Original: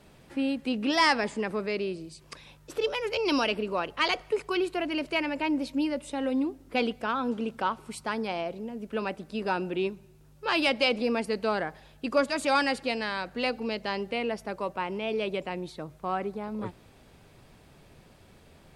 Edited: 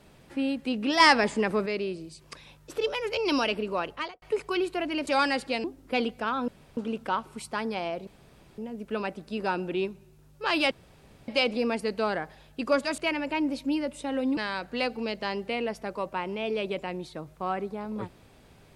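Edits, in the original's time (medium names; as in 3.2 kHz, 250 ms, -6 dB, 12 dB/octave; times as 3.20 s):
1.00–1.66 s: gain +4.5 dB
3.87–4.22 s: studio fade out
5.07–6.46 s: swap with 12.43–13.00 s
7.30 s: insert room tone 0.29 s
8.60 s: insert room tone 0.51 s
10.73 s: insert room tone 0.57 s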